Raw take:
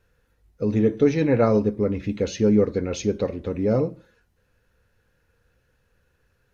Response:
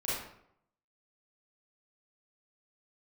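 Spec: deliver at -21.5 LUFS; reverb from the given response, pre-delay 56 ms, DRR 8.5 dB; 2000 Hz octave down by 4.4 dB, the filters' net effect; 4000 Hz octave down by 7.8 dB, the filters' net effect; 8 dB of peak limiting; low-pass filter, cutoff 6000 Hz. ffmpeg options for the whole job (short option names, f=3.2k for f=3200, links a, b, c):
-filter_complex "[0:a]lowpass=6k,equalizer=f=2k:t=o:g=-3.5,equalizer=f=4k:t=o:g=-8,alimiter=limit=-15.5dB:level=0:latency=1,asplit=2[a][b];[1:a]atrim=start_sample=2205,adelay=56[c];[b][c]afir=irnorm=-1:irlink=0,volume=-14.5dB[d];[a][d]amix=inputs=2:normalize=0,volume=4dB"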